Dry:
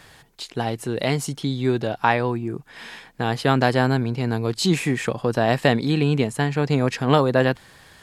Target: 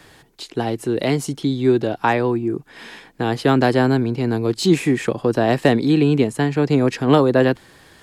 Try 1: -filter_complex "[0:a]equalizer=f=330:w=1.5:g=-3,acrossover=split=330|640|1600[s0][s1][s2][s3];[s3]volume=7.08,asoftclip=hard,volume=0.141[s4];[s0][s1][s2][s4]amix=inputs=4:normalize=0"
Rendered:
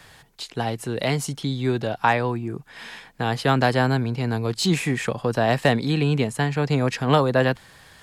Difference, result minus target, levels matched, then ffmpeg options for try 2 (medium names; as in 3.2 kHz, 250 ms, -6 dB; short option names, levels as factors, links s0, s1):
250 Hz band -3.0 dB
-filter_complex "[0:a]equalizer=f=330:w=1.5:g=8,acrossover=split=330|640|1600[s0][s1][s2][s3];[s3]volume=7.08,asoftclip=hard,volume=0.141[s4];[s0][s1][s2][s4]amix=inputs=4:normalize=0"